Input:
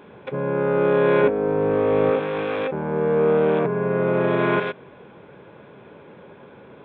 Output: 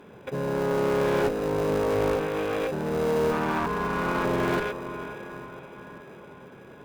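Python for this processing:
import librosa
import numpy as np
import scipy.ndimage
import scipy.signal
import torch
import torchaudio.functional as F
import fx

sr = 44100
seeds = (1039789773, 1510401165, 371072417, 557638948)

p1 = fx.graphic_eq(x, sr, hz=(125, 250, 500, 1000, 2000), db=(-10, 4, -11, 11, 4), at=(3.31, 4.25))
p2 = fx.echo_diffused(p1, sr, ms=501, feedback_pct=55, wet_db=-13)
p3 = fx.sample_hold(p2, sr, seeds[0], rate_hz=1100.0, jitter_pct=0)
p4 = p2 + (p3 * librosa.db_to_amplitude(-11.0))
p5 = fx.clip_asym(p4, sr, top_db=-21.5, bottom_db=-10.0)
y = p5 * librosa.db_to_amplitude(-4.0)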